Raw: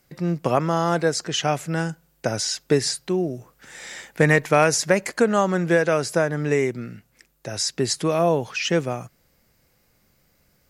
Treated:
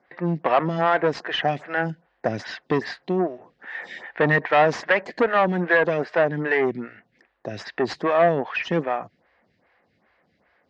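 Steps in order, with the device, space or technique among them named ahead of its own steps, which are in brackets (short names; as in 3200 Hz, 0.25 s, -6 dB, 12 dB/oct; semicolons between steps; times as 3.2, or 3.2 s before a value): vibe pedal into a guitar amplifier (photocell phaser 2.5 Hz; tube stage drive 20 dB, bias 0.5; speaker cabinet 96–3700 Hz, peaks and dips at 130 Hz -9 dB, 720 Hz +6 dB, 1000 Hz +5 dB, 1800 Hz +10 dB); gain +5 dB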